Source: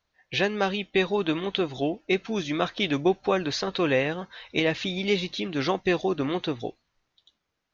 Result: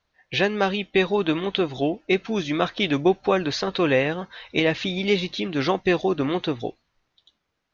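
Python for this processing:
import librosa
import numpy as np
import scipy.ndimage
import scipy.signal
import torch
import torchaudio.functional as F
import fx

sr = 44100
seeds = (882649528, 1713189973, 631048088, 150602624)

y = fx.air_absorb(x, sr, metres=50.0)
y = F.gain(torch.from_numpy(y), 3.5).numpy()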